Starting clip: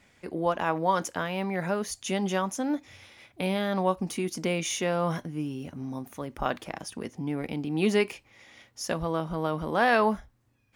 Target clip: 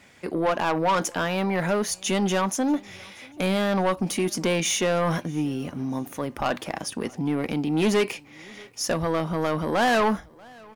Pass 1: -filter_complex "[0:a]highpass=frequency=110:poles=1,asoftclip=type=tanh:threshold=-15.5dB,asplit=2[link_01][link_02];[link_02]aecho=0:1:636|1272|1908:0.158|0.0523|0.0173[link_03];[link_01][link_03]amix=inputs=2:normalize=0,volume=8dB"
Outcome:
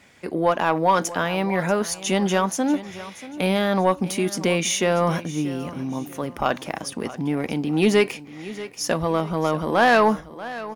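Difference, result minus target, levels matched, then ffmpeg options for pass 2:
soft clipping: distortion −10 dB; echo-to-direct +10 dB
-filter_complex "[0:a]highpass=frequency=110:poles=1,asoftclip=type=tanh:threshold=-25dB,asplit=2[link_01][link_02];[link_02]aecho=0:1:636|1272:0.0501|0.0165[link_03];[link_01][link_03]amix=inputs=2:normalize=0,volume=8dB"

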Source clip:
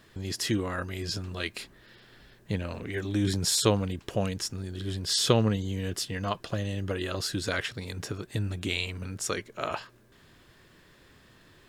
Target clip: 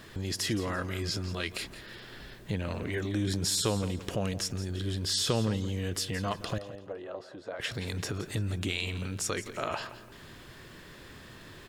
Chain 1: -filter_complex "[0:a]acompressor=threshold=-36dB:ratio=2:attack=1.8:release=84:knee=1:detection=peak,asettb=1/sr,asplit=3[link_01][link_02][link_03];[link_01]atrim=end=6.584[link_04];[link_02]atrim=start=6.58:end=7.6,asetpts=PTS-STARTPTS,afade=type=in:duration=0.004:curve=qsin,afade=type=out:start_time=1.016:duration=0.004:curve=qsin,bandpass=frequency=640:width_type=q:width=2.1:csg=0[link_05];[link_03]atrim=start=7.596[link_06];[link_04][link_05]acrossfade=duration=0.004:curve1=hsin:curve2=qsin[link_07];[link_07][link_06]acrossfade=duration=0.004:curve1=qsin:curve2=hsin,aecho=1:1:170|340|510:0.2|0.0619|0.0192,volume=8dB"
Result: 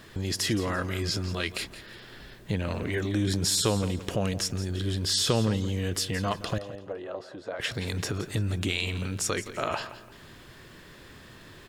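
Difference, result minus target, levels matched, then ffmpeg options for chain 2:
downward compressor: peak gain reduction −3.5 dB
-filter_complex "[0:a]acompressor=threshold=-43dB:ratio=2:attack=1.8:release=84:knee=1:detection=peak,asettb=1/sr,asplit=3[link_01][link_02][link_03];[link_01]atrim=end=6.584[link_04];[link_02]atrim=start=6.58:end=7.6,asetpts=PTS-STARTPTS,afade=type=in:duration=0.004:curve=qsin,afade=type=out:start_time=1.016:duration=0.004:curve=qsin,bandpass=frequency=640:width_type=q:width=2.1:csg=0[link_05];[link_03]atrim=start=7.596[link_06];[link_04][link_05]acrossfade=duration=0.004:curve1=hsin:curve2=qsin[link_07];[link_07][link_06]acrossfade=duration=0.004:curve1=qsin:curve2=hsin,aecho=1:1:170|340|510:0.2|0.0619|0.0192,volume=8dB"

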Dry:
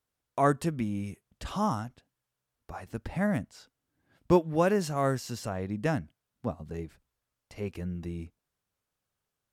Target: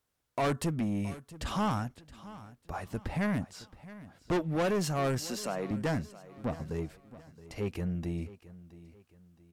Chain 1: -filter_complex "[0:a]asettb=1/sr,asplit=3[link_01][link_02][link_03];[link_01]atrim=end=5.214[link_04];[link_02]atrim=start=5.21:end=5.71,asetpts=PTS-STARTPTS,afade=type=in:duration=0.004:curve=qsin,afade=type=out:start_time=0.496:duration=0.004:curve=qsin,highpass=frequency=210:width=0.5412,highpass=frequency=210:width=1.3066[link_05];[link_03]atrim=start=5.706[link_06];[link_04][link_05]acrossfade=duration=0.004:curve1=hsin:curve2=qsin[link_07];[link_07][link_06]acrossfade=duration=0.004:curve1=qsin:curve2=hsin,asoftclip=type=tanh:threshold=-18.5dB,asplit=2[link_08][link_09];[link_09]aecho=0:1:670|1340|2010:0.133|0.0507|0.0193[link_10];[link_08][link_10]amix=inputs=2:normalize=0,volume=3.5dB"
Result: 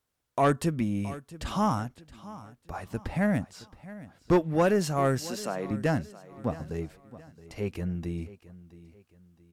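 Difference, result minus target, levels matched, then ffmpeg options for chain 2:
soft clipping: distortion −9 dB
-filter_complex "[0:a]asettb=1/sr,asplit=3[link_01][link_02][link_03];[link_01]atrim=end=5.214[link_04];[link_02]atrim=start=5.21:end=5.71,asetpts=PTS-STARTPTS,afade=type=in:duration=0.004:curve=qsin,afade=type=out:start_time=0.496:duration=0.004:curve=qsin,highpass=frequency=210:width=0.5412,highpass=frequency=210:width=1.3066[link_05];[link_03]atrim=start=5.706[link_06];[link_04][link_05]acrossfade=duration=0.004:curve1=hsin:curve2=qsin[link_07];[link_07][link_06]acrossfade=duration=0.004:curve1=qsin:curve2=hsin,asoftclip=type=tanh:threshold=-29dB,asplit=2[link_08][link_09];[link_09]aecho=0:1:670|1340|2010:0.133|0.0507|0.0193[link_10];[link_08][link_10]amix=inputs=2:normalize=0,volume=3.5dB"

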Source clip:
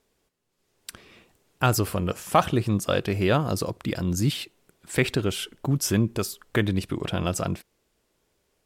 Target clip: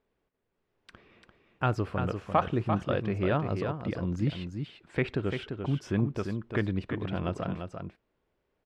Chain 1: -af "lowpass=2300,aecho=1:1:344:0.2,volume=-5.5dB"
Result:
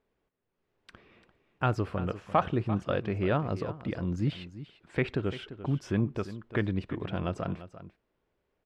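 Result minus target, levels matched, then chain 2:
echo-to-direct −7.5 dB
-af "lowpass=2300,aecho=1:1:344:0.473,volume=-5.5dB"

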